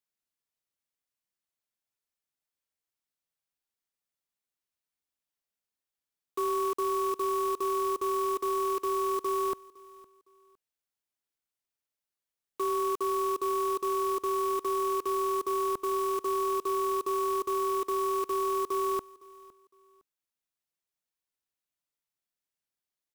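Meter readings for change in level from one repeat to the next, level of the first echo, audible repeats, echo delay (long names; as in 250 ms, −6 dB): −11.0 dB, −22.5 dB, 2, 510 ms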